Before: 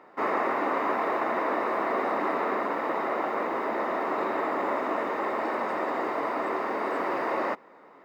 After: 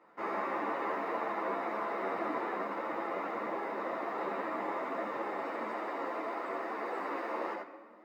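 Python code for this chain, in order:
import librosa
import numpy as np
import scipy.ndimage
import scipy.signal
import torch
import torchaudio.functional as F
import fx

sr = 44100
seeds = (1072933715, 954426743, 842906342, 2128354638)

y = fx.highpass(x, sr, hz=fx.steps((0.0, 67.0), (5.7, 220.0)), slope=24)
y = y + 10.0 ** (-5.0 / 20.0) * np.pad(y, (int(78 * sr / 1000.0), 0))[:len(y)]
y = fx.room_shoebox(y, sr, seeds[0], volume_m3=1800.0, walls='mixed', distance_m=0.77)
y = fx.ensemble(y, sr)
y = y * 10.0 ** (-6.5 / 20.0)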